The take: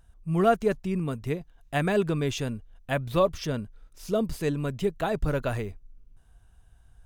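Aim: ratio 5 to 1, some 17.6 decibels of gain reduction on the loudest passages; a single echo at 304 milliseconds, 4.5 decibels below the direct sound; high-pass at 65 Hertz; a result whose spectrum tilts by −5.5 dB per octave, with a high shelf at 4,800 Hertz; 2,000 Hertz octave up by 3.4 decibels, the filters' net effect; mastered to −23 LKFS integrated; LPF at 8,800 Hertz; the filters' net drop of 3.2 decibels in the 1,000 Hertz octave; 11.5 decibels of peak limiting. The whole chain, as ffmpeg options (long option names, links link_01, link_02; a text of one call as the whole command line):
ffmpeg -i in.wav -af "highpass=65,lowpass=8800,equalizer=frequency=1000:width_type=o:gain=-7.5,equalizer=frequency=2000:width_type=o:gain=8.5,highshelf=frequency=4800:gain=-8.5,acompressor=threshold=-40dB:ratio=5,alimiter=level_in=15dB:limit=-24dB:level=0:latency=1,volume=-15dB,aecho=1:1:304:0.596,volume=24.5dB" out.wav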